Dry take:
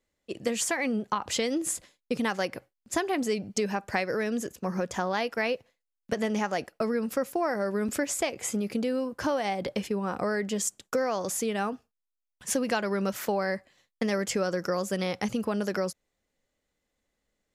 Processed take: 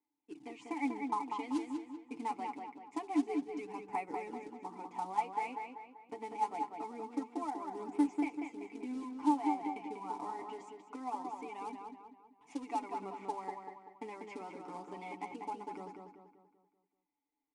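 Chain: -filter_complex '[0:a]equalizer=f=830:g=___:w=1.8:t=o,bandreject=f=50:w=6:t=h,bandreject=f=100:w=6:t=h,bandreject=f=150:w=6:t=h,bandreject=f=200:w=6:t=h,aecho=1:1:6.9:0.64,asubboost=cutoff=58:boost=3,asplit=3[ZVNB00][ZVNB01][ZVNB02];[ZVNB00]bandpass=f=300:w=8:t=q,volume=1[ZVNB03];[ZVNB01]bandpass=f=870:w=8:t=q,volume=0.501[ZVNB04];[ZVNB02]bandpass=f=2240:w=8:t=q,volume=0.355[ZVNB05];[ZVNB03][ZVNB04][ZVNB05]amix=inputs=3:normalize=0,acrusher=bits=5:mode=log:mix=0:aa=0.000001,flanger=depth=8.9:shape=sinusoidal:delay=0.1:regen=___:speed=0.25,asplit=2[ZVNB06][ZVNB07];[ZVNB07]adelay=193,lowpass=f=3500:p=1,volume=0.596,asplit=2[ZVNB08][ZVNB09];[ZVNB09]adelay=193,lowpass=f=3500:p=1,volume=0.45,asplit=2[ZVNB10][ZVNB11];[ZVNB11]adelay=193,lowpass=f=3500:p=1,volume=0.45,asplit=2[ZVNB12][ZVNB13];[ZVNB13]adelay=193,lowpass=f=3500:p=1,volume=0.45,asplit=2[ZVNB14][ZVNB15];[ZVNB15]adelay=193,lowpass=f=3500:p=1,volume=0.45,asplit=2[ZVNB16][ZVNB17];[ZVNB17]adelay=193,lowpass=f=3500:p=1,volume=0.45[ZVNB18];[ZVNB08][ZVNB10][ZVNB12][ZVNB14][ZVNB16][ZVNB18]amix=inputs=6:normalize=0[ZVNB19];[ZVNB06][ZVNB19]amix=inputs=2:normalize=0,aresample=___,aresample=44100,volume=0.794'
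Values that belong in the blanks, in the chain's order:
12, 38, 22050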